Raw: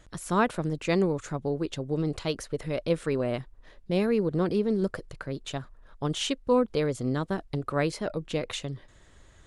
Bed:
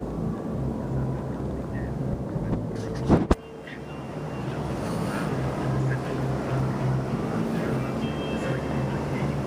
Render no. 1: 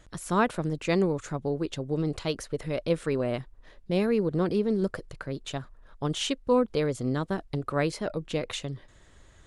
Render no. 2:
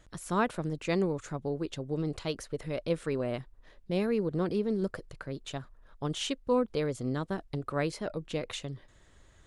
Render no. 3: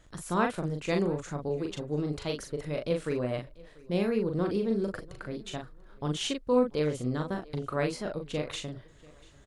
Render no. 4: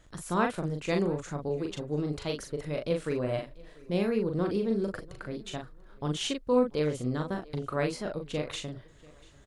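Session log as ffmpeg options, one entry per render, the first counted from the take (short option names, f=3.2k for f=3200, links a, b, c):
-af anull
-af "volume=-4dB"
-filter_complex "[0:a]asplit=2[a][b];[b]adelay=40,volume=-4.5dB[c];[a][c]amix=inputs=2:normalize=0,aecho=1:1:690|1380:0.0668|0.0214"
-filter_complex "[0:a]asettb=1/sr,asplit=3[a][b][c];[a]atrim=end=3.234[d];[b]atrim=start=3.23:end=3.94,asetpts=PTS-STARTPTS,afade=t=in:d=0.004:c=qsin,afade=t=out:st=0.706:d=0.004:c=qsin,asplit=2[e][f];[f]adelay=43,volume=-5dB[g];[e][g]amix=inputs=2:normalize=0,atrim=end_sample=31311[h];[c]atrim=start=3.936[i];[d][h]acrossfade=d=0.004:c1=hsin:c2=qsin[j];[j][i]acrossfade=d=0.004:c1=qsin:c2=hsin"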